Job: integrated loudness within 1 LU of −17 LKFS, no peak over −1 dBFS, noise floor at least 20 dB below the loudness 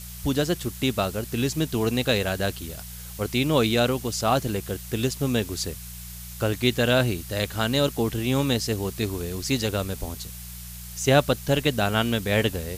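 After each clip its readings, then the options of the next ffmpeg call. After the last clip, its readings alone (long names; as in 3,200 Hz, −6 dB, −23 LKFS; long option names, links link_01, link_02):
mains hum 60 Hz; hum harmonics up to 180 Hz; level of the hum −40 dBFS; background noise floor −39 dBFS; target noise floor −45 dBFS; integrated loudness −25.0 LKFS; sample peak −7.5 dBFS; target loudness −17.0 LKFS
→ -af "bandreject=frequency=60:width_type=h:width=4,bandreject=frequency=120:width_type=h:width=4,bandreject=frequency=180:width_type=h:width=4"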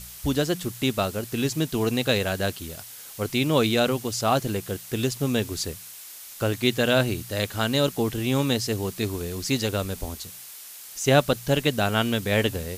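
mains hum none found; background noise floor −42 dBFS; target noise floor −45 dBFS
→ -af "afftdn=noise_reduction=6:noise_floor=-42"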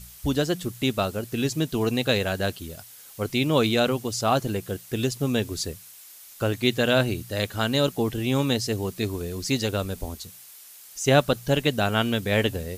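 background noise floor −47 dBFS; integrated loudness −25.0 LKFS; sample peak −7.0 dBFS; target loudness −17.0 LKFS
→ -af "volume=8dB,alimiter=limit=-1dB:level=0:latency=1"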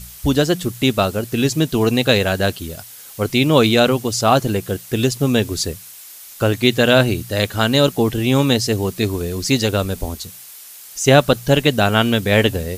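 integrated loudness −17.0 LKFS; sample peak −1.0 dBFS; background noise floor −39 dBFS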